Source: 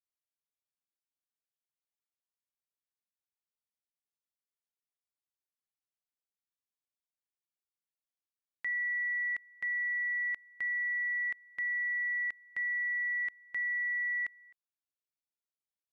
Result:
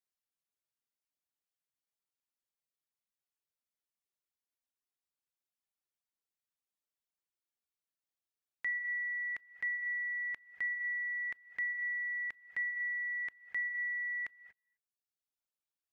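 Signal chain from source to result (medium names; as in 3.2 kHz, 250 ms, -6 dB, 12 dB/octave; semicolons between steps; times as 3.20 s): gated-style reverb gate 260 ms rising, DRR 8.5 dB; reverb removal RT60 1.1 s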